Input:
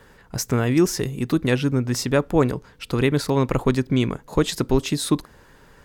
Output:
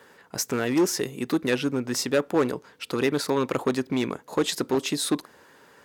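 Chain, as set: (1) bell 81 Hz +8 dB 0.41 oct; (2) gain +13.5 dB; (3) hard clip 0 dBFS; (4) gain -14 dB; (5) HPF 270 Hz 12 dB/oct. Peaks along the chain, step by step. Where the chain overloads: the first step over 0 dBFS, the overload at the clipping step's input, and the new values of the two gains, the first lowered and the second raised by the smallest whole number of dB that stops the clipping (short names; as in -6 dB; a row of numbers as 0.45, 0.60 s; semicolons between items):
-4.5, +9.0, 0.0, -14.0, -9.5 dBFS; step 2, 9.0 dB; step 2 +4.5 dB, step 4 -5 dB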